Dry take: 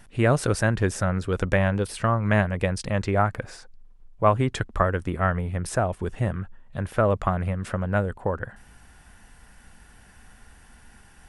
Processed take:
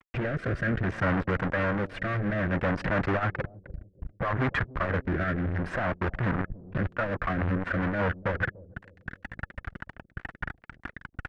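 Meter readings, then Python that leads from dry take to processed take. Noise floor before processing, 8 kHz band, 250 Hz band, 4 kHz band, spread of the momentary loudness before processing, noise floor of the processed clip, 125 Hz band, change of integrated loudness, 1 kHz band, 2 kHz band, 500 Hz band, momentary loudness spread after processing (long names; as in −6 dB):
−52 dBFS, below −20 dB, −2.5 dB, −6.0 dB, 8 LU, −66 dBFS, −5.0 dB, −4.5 dB, −5.0 dB, +0.5 dB, −6.0 dB, 16 LU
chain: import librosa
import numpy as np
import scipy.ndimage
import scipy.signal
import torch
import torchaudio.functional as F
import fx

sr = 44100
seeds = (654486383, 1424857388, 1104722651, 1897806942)

p1 = fx.spec_quant(x, sr, step_db=15)
p2 = fx.level_steps(p1, sr, step_db=20)
p3 = p1 + F.gain(torch.from_numpy(p2), -1.0).numpy()
p4 = fx.transient(p3, sr, attack_db=8, sustain_db=-9)
p5 = fx.over_compress(p4, sr, threshold_db=-21.0, ratio=-1.0)
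p6 = fx.fuzz(p5, sr, gain_db=29.0, gate_db=-34.0)
p7 = fx.notch_comb(p6, sr, f0_hz=430.0)
p8 = np.clip(p7, -10.0 ** (-25.0 / 20.0), 10.0 ** (-25.0 / 20.0))
p9 = fx.rotary_switch(p8, sr, hz=0.6, then_hz=5.0, switch_at_s=6.43)
p10 = fx.lowpass_res(p9, sr, hz=1700.0, q=2.3)
p11 = p10 + fx.echo_bbd(p10, sr, ms=292, stages=1024, feedback_pct=41, wet_db=-20.0, dry=0)
p12 = fx.transformer_sat(p11, sr, knee_hz=170.0)
y = F.gain(torch.from_numpy(p12), 1.5).numpy()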